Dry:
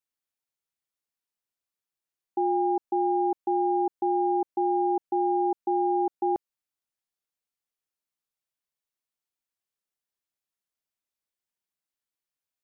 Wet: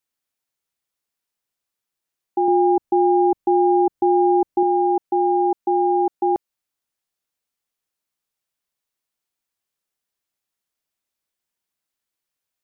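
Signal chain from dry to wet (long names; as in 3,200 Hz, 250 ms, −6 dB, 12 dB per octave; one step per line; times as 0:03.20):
0:02.48–0:04.63: low-shelf EQ 210 Hz +12 dB
level +6.5 dB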